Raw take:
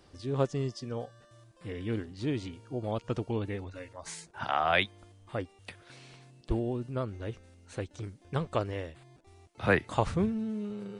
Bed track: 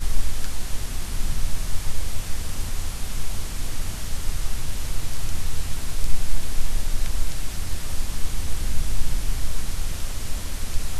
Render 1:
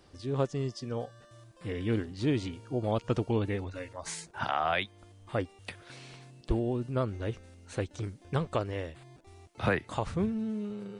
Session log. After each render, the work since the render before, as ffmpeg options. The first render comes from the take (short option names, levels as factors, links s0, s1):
-af "dynaudnorm=f=300:g=7:m=1.5,alimiter=limit=0.158:level=0:latency=1:release=499"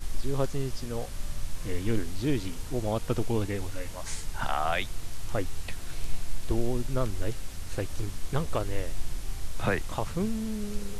-filter_complex "[1:a]volume=0.316[s0];[0:a][s0]amix=inputs=2:normalize=0"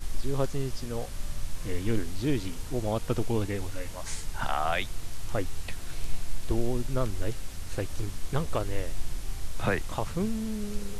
-af anull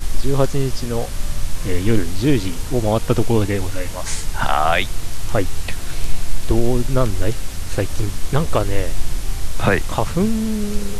-af "volume=3.76,alimiter=limit=0.708:level=0:latency=1"